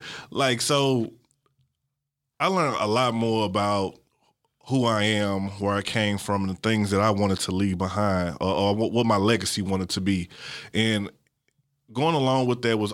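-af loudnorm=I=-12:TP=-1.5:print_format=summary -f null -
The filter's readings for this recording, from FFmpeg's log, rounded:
Input Integrated:    -24.2 LUFS
Input True Peak:      -6.3 dBTP
Input LRA:             2.0 LU
Input Threshold:     -35.0 LUFS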